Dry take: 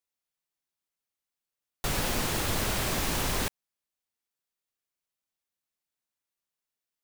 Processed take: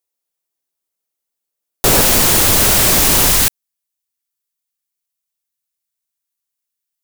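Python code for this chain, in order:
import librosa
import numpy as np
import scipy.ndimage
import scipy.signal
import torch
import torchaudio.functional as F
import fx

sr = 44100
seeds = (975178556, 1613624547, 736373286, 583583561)

y = fx.high_shelf(x, sr, hz=5100.0, db=12.0)
y = fx.leveller(y, sr, passes=3)
y = fx.peak_eq(y, sr, hz=450.0, db=fx.steps((0.0, 9.0), (2.01, 2.0), (3.31, -4.5)), octaves=2.0)
y = y * 10.0 ** (5.0 / 20.0)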